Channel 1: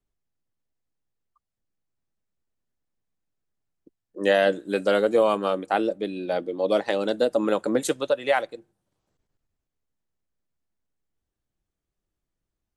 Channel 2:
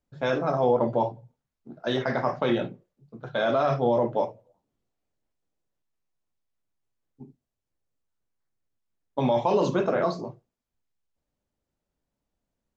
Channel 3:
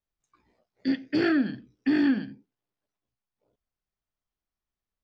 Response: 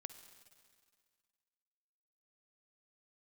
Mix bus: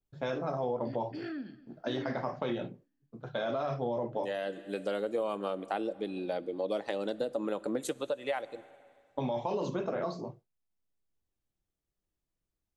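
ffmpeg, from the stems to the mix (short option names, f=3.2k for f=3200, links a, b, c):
-filter_complex "[0:a]adynamicequalizer=threshold=0.00631:dfrequency=5900:dqfactor=0.71:tfrequency=5900:tqfactor=0.71:attack=5:release=100:ratio=0.375:range=2:mode=cutabove:tftype=bell,volume=-7dB,asplit=2[a][b];[b]volume=-3dB[c];[1:a]agate=range=-33dB:threshold=-46dB:ratio=3:detection=peak,volume=-4dB,asplit=2[d][e];[2:a]volume=-17.5dB,asplit=3[f][g][h];[g]volume=-6.5dB[i];[h]volume=-20dB[j];[e]apad=whole_len=563132[k];[a][k]sidechaincompress=threshold=-41dB:ratio=8:attack=16:release=729[l];[3:a]atrim=start_sample=2205[m];[c][i]amix=inputs=2:normalize=0[n];[n][m]afir=irnorm=-1:irlink=0[o];[j]aecho=0:1:238|476|714|952:1|0.28|0.0784|0.022[p];[l][d][f][o][p]amix=inputs=5:normalize=0,equalizer=f=1.5k:w=1.5:g=-2.5,acompressor=threshold=-31dB:ratio=3"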